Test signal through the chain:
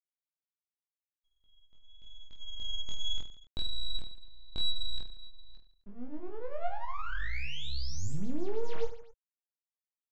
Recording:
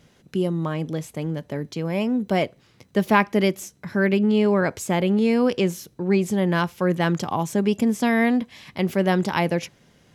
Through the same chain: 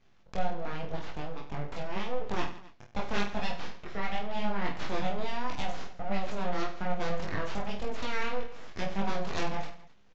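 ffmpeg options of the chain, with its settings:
-filter_complex "[0:a]acrossover=split=1700[s0][s1];[s1]crystalizer=i=3:c=0[s2];[s0][s2]amix=inputs=2:normalize=0,equalizer=f=350:t=o:w=0.2:g=10,acompressor=threshold=0.0355:ratio=2,flanger=delay=22.5:depth=5.7:speed=0.86,aeval=exprs='sgn(val(0))*max(abs(val(0))-0.001,0)':c=same,highpass=f=200:p=1,aeval=exprs='abs(val(0))':c=same,adynamicsmooth=sensitivity=5.5:basefreq=2900,aecho=1:1:20|50|95|162.5|263.8:0.631|0.398|0.251|0.158|0.1,aresample=16000,aresample=44100"

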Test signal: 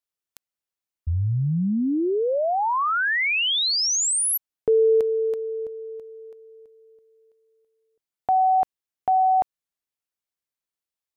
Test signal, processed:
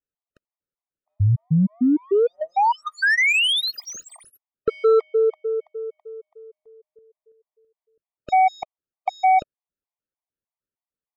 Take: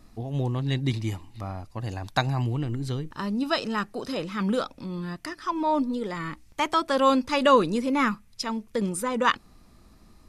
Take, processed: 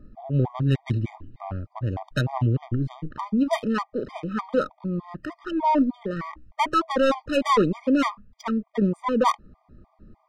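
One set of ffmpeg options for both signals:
-af "volume=8.91,asoftclip=hard,volume=0.112,adynamicsmooth=sensitivity=1.5:basefreq=1200,afftfilt=real='re*gt(sin(2*PI*3.3*pts/sr)*(1-2*mod(floor(b*sr/1024/620),2)),0)':imag='im*gt(sin(2*PI*3.3*pts/sr)*(1-2*mod(floor(b*sr/1024/620),2)),0)':win_size=1024:overlap=0.75,volume=2.11"

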